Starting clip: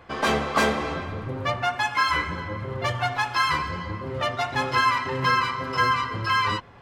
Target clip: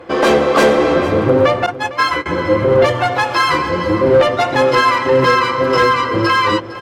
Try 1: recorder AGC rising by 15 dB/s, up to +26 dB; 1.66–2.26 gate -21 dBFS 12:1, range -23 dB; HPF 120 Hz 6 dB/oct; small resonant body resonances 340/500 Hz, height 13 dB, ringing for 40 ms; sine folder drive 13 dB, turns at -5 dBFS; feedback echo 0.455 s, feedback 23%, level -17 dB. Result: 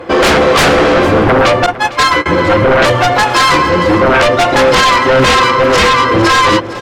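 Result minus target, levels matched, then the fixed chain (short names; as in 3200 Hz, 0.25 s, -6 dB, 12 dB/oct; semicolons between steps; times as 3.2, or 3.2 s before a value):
sine folder: distortion +17 dB
recorder AGC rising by 15 dB/s, up to +26 dB; 1.66–2.26 gate -21 dBFS 12:1, range -23 dB; HPF 120 Hz 6 dB/oct; small resonant body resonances 340/500 Hz, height 13 dB, ringing for 40 ms; sine folder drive 4 dB, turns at -5 dBFS; feedback echo 0.455 s, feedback 23%, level -17 dB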